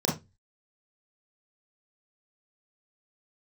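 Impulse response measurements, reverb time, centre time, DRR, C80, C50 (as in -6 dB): 0.20 s, 30 ms, -3.5 dB, 17.0 dB, 7.5 dB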